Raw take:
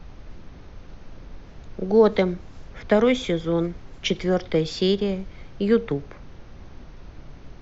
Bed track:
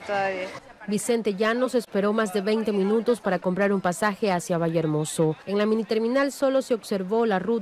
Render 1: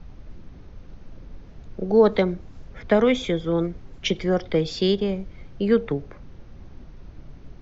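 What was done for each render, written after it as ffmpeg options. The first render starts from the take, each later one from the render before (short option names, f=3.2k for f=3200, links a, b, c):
-af "afftdn=nr=6:nf=-44"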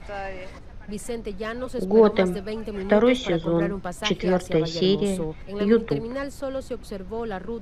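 -filter_complex "[1:a]volume=-8dB[a];[0:a][a]amix=inputs=2:normalize=0"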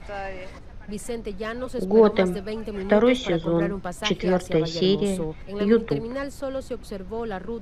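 -af anull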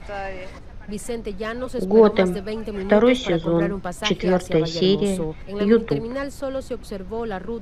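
-af "volume=2.5dB"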